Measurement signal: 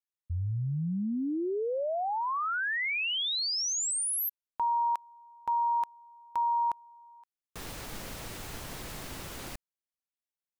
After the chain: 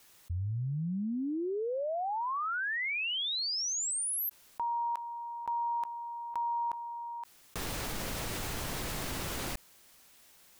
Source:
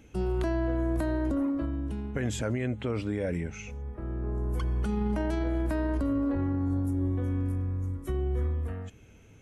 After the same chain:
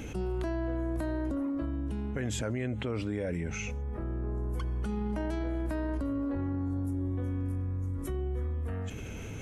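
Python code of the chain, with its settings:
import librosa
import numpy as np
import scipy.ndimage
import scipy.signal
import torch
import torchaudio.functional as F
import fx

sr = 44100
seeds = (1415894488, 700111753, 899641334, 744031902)

y = fx.env_flatten(x, sr, amount_pct=70)
y = y * 10.0 ** (-5.0 / 20.0)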